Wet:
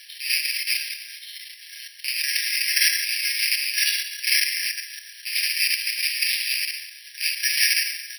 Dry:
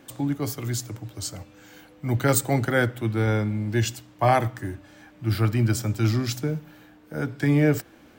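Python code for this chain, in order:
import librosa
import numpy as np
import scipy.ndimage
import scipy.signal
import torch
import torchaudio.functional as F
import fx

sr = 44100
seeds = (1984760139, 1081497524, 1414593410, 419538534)

p1 = fx.rattle_buzz(x, sr, strikes_db=-28.0, level_db=-21.0)
p2 = 10.0 ** (-18.5 / 20.0) * np.tanh(p1 / 10.0 ** (-18.5 / 20.0))
p3 = p1 + F.gain(torch.from_numpy(p2), -9.0).numpy()
p4 = p3 + 10.0 ** (-13.0 / 20.0) * np.pad(p3, (int(165 * sr / 1000.0), 0))[:len(p3)]
p5 = fx.rev_plate(p4, sr, seeds[0], rt60_s=1.3, hf_ratio=0.65, predelay_ms=0, drr_db=-9.5)
p6 = fx.quant_dither(p5, sr, seeds[1], bits=6, dither='triangular')
p7 = fx.high_shelf(p6, sr, hz=2100.0, db=-9.0)
p8 = fx.level_steps(p7, sr, step_db=9)
p9 = fx.brickwall_highpass(p8, sr, low_hz=1600.0)
p10 = (np.kron(scipy.signal.resample_poly(p9, 1, 6), np.eye(6)[0]) * 6)[:len(p9)]
p11 = fx.peak_eq(p10, sr, hz=3500.0, db=14.5, octaves=2.6)
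y = F.gain(torch.from_numpy(p11), -6.5).numpy()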